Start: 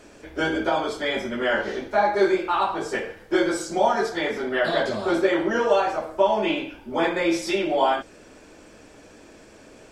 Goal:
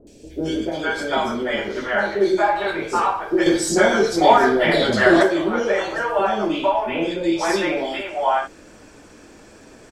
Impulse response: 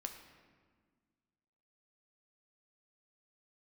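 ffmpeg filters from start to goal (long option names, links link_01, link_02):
-filter_complex "[0:a]asettb=1/sr,asplit=3[link_01][link_02][link_03];[link_01]atrim=end=6.974[link_04];[link_02]atrim=start=6.97:end=7.38,asetpts=PTS-STARTPTS,afade=type=in:duration=0.004:curve=qsin,afade=type=out:start_time=0.406:duration=0.004:curve=qsin,lowpass=9700[link_05];[link_03]atrim=start=7.376[link_06];[link_04][link_05]acrossfade=duration=0.004:curve1=hsin:curve2=qsin[link_07];[link_07][link_06]acrossfade=duration=0.004:curve1=qsin:curve2=hsin,acrossover=split=550|2800[link_08][link_09][link_10];[link_10]adelay=70[link_11];[link_09]adelay=450[link_12];[link_08][link_12][link_11]amix=inputs=3:normalize=0,asettb=1/sr,asplit=3[link_13][link_14][link_15];[link_13]atrim=end=3.464[link_16];[link_14]atrim=start=3.46:end=5.23,asetpts=PTS-STARTPTS,afade=type=in:duration=0.004:curve=qsin,afade=type=out:start_time=1.766:duration=0.004:curve=qsin,acontrast=56[link_17];[link_15]atrim=start=5.226[link_18];[link_16][link_17]acrossfade=duration=0.004:curve1=hsin:curve2=qsin[link_19];[link_19][link_18]acrossfade=duration=0.004:curve1=qsin:curve2=hsin,volume=4dB"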